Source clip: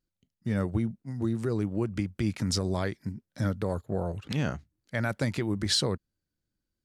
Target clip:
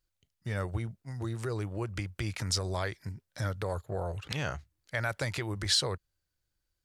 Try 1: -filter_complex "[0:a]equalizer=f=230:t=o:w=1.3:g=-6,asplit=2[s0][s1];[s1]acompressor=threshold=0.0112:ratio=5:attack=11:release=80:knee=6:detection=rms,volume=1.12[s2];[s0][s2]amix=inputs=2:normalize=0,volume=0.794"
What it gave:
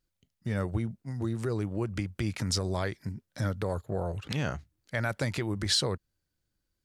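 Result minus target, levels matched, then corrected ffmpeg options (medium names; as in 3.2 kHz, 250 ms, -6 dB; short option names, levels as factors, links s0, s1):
250 Hz band +4.5 dB
-filter_complex "[0:a]equalizer=f=230:t=o:w=1.3:g=-16.5,asplit=2[s0][s1];[s1]acompressor=threshold=0.0112:ratio=5:attack=11:release=80:knee=6:detection=rms,volume=1.12[s2];[s0][s2]amix=inputs=2:normalize=0,volume=0.794"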